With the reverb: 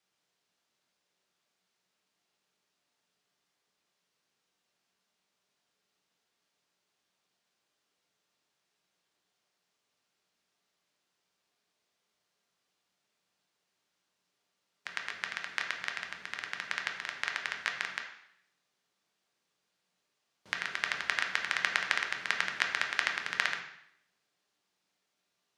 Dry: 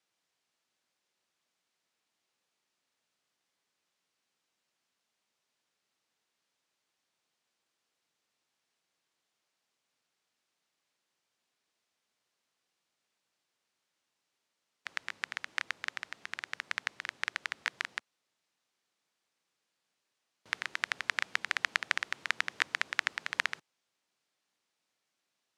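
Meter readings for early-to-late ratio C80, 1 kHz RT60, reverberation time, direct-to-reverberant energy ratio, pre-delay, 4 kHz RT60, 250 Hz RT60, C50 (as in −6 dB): 9.0 dB, 0.70 s, 0.70 s, 1.5 dB, 3 ms, 0.70 s, 0.80 s, 6.5 dB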